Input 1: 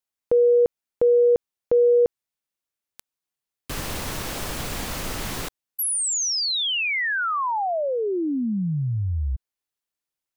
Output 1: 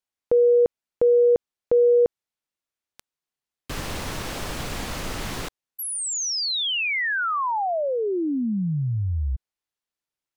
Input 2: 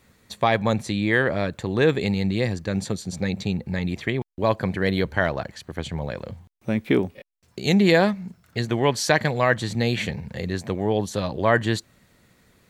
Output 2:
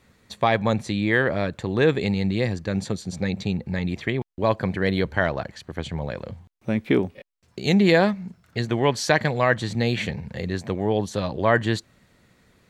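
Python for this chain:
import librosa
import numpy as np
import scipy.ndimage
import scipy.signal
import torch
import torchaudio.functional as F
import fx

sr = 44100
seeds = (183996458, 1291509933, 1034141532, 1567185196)

y = fx.high_shelf(x, sr, hz=9900.0, db=-10.0)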